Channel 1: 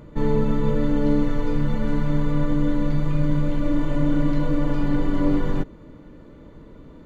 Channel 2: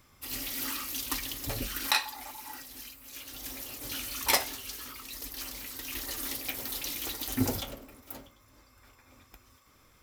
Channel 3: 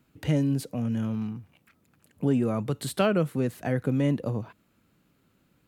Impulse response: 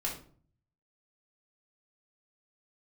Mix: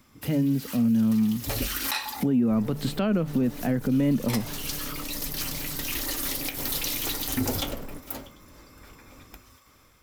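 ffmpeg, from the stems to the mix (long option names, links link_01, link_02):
-filter_complex "[0:a]asoftclip=type=tanh:threshold=-24dB,adelay=2350,volume=-17.5dB[link_01];[1:a]volume=1dB[link_02];[2:a]lowpass=5100,equalizer=frequency=230:width_type=o:width=0.53:gain=10.5,bandreject=frequency=50:width_type=h:width=6,bandreject=frequency=100:width_type=h:width=6,bandreject=frequency=150:width_type=h:width=6,volume=-2.5dB,asplit=2[link_03][link_04];[link_04]apad=whole_len=442069[link_05];[link_02][link_05]sidechaincompress=threshold=-36dB:ratio=8:attack=26:release=257[link_06];[link_01][link_06][link_03]amix=inputs=3:normalize=0,dynaudnorm=framelen=470:gausssize=5:maxgain=7dB,alimiter=limit=-16dB:level=0:latency=1:release=143"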